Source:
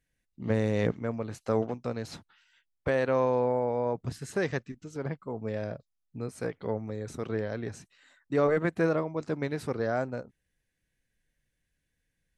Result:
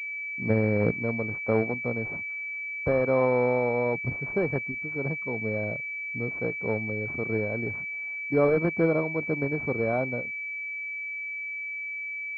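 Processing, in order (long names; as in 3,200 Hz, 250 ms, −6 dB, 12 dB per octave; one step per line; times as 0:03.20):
switching amplifier with a slow clock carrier 2,300 Hz
level +3 dB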